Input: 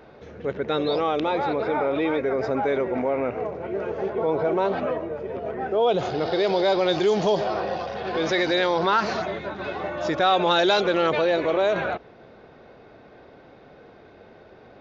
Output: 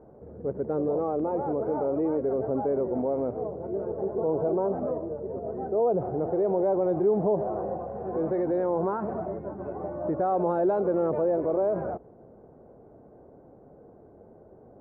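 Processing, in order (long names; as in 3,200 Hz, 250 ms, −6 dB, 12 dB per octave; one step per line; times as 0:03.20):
Bessel low-pass filter 610 Hz, order 4
level −1 dB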